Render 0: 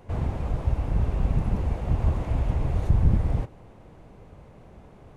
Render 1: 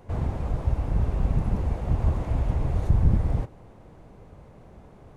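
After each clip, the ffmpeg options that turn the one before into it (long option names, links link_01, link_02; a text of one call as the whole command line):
ffmpeg -i in.wav -af "equalizer=frequency=2700:width=1.7:gain=-3" out.wav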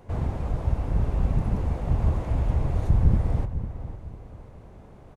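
ffmpeg -i in.wav -filter_complex "[0:a]asplit=2[link_01][link_02];[link_02]adelay=501,lowpass=frequency=2000:poles=1,volume=-11dB,asplit=2[link_03][link_04];[link_04]adelay=501,lowpass=frequency=2000:poles=1,volume=0.33,asplit=2[link_05][link_06];[link_06]adelay=501,lowpass=frequency=2000:poles=1,volume=0.33,asplit=2[link_07][link_08];[link_08]adelay=501,lowpass=frequency=2000:poles=1,volume=0.33[link_09];[link_01][link_03][link_05][link_07][link_09]amix=inputs=5:normalize=0" out.wav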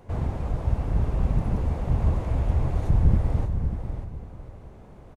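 ffmpeg -i in.wav -af "aecho=1:1:593:0.335" out.wav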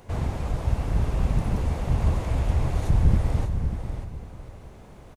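ffmpeg -i in.wav -af "highshelf=frequency=2000:gain=10.5" out.wav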